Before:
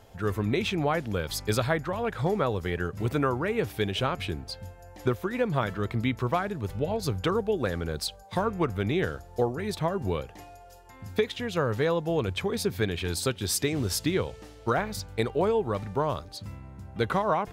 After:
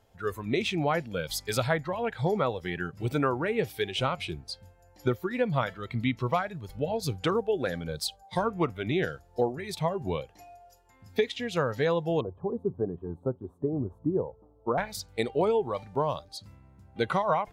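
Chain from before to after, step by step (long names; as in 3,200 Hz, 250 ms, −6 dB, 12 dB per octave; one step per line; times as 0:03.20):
noise reduction from a noise print of the clip's start 11 dB
0:12.21–0:14.78: elliptic low-pass filter 1,100 Hz, stop band 50 dB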